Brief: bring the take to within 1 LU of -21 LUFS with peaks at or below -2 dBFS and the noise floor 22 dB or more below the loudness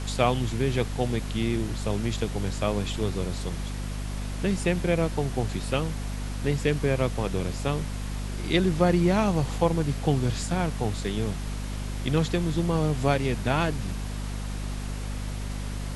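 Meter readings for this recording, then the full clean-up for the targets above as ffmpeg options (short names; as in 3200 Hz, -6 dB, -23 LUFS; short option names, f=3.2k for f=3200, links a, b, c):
hum 50 Hz; harmonics up to 250 Hz; hum level -29 dBFS; noise floor -33 dBFS; noise floor target -50 dBFS; loudness -27.5 LUFS; peak -6.5 dBFS; loudness target -21.0 LUFS
-> -af "bandreject=f=50:t=h:w=6,bandreject=f=100:t=h:w=6,bandreject=f=150:t=h:w=6,bandreject=f=200:t=h:w=6,bandreject=f=250:t=h:w=6"
-af "afftdn=nr=17:nf=-33"
-af "volume=6.5dB,alimiter=limit=-2dB:level=0:latency=1"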